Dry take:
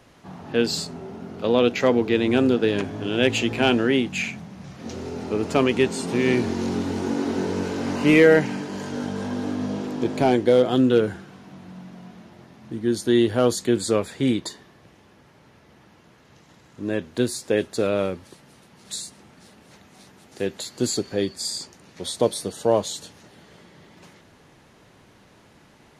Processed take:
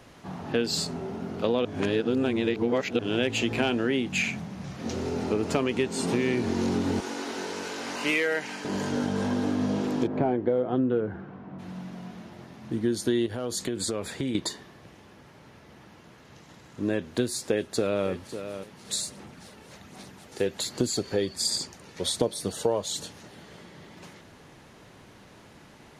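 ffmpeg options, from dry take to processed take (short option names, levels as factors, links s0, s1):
-filter_complex "[0:a]asettb=1/sr,asplit=3[s0][s1][s2];[s0]atrim=end=7.004[s3];[s1]atrim=start=7:end=8.65,asetpts=PTS-STARTPTS,afade=t=in:d=0.004:c=qsin,afade=t=out:st=1.646:d=0.004:c=qsin,highpass=f=1400:p=1[s4];[s2]atrim=start=8.646[s5];[s3][s4]acrossfade=d=0.004:c1=hsin:c2=qsin[s6];[s6][s5]acrossfade=d=0.004:c1=qsin:c2=hsin,asplit=3[s7][s8][s9];[s7]afade=t=out:st=10.06:d=0.02[s10];[s8]lowpass=1400,afade=t=in:st=10.06:d=0.02,afade=t=out:st=11.58:d=0.02[s11];[s9]afade=t=in:st=11.58:d=0.02[s12];[s10][s11][s12]amix=inputs=3:normalize=0,asettb=1/sr,asplit=3[s13][s14][s15];[s13]atrim=end=13.264[s16];[s14]atrim=start=13.26:end=14.35,asetpts=PTS-STARTPTS,afade=t=in:d=0.004:c=qsin,afade=t=out:st=1.086:d=0.004:c=qsin,acompressor=threshold=0.0447:ratio=12:attack=3.2:release=140:knee=1:detection=peak[s17];[s15]atrim=start=14.346[s18];[s16][s17]acrossfade=d=0.004:c1=hsin:c2=qsin[s19];[s19][s18]acrossfade=d=0.004:c1=qsin:c2=hsin,asplit=2[s20][s21];[s21]afade=t=in:st=17.41:d=0.01,afade=t=out:st=18.08:d=0.01,aecho=0:1:550|1100:0.158489|0.0237734[s22];[s20][s22]amix=inputs=2:normalize=0,asplit=3[s23][s24][s25];[s23]afade=t=out:st=18.96:d=0.02[s26];[s24]aphaser=in_gain=1:out_gain=1:delay=2.3:decay=0.32:speed=1.3:type=sinusoidal,afade=t=in:st=18.96:d=0.02,afade=t=out:st=23.02:d=0.02[s27];[s25]afade=t=in:st=23.02:d=0.02[s28];[s26][s27][s28]amix=inputs=3:normalize=0,asplit=3[s29][s30][s31];[s29]atrim=end=1.652[s32];[s30]atrim=start=1.648:end=2.992,asetpts=PTS-STARTPTS,areverse[s33];[s31]atrim=start=2.988[s34];[s32][s33]acrossfade=d=0.004:c1=hsin:c2=hsin[s35];[s35][s34]acrossfade=d=0.004:c1=hsin:c2=hsin,acompressor=threshold=0.0631:ratio=6,volume=1.26"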